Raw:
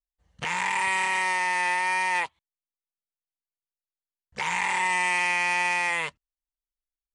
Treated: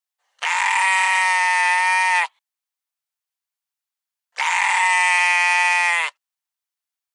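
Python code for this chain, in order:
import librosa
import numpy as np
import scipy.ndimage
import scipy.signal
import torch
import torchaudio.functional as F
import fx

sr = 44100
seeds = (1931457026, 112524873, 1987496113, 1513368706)

y = scipy.signal.sosfilt(scipy.signal.butter(4, 720.0, 'highpass', fs=sr, output='sos'), x)
y = F.gain(torch.from_numpy(y), 8.0).numpy()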